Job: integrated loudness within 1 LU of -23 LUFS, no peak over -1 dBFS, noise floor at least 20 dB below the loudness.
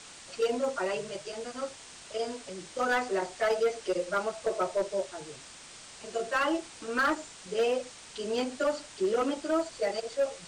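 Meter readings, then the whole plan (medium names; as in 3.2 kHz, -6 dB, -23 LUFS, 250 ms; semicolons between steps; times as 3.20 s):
clipped samples 1.4%; clipping level -21.5 dBFS; noise floor -49 dBFS; noise floor target -52 dBFS; loudness -31.5 LUFS; peak level -21.5 dBFS; loudness target -23.0 LUFS
-> clip repair -21.5 dBFS; noise print and reduce 6 dB; trim +8.5 dB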